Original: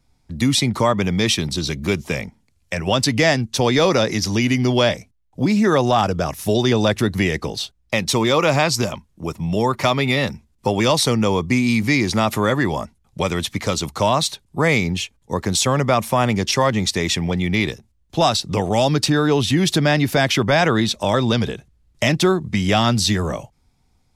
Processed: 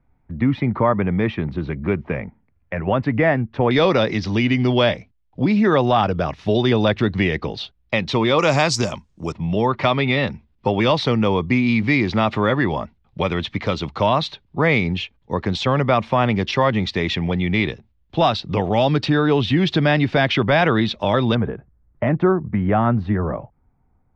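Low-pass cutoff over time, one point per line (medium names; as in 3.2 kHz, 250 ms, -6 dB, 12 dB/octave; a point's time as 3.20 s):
low-pass 24 dB/octave
2 kHz
from 3.71 s 3.8 kHz
from 8.39 s 7.6 kHz
from 9.32 s 3.7 kHz
from 21.35 s 1.6 kHz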